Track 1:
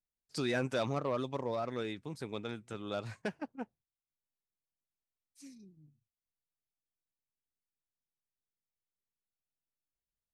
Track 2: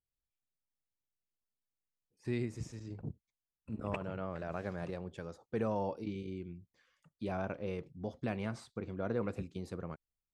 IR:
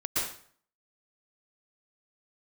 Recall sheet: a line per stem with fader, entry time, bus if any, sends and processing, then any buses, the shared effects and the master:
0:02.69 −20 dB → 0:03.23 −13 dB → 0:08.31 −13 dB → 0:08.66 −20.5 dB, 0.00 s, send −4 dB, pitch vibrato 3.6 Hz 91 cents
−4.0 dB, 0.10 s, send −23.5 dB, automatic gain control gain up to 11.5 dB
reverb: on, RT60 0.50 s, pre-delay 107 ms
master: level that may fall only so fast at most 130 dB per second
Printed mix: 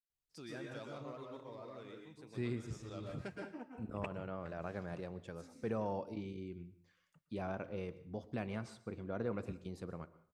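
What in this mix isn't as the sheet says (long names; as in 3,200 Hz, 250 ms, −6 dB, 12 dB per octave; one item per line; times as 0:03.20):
stem 2: missing automatic gain control gain up to 11.5 dB
master: missing level that may fall only so fast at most 130 dB per second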